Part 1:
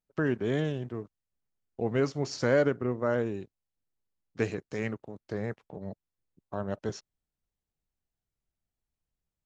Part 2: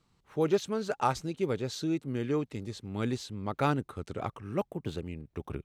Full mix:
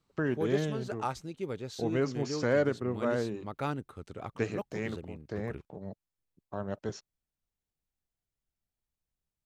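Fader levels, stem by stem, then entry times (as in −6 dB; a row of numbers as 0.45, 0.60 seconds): −2.5, −6.0 decibels; 0.00, 0.00 seconds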